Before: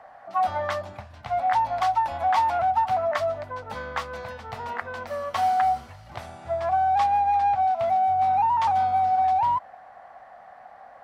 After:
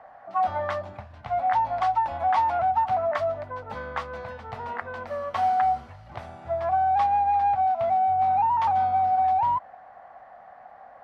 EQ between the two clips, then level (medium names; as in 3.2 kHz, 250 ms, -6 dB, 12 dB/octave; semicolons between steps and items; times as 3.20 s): low-pass 2.1 kHz 6 dB/octave; 0.0 dB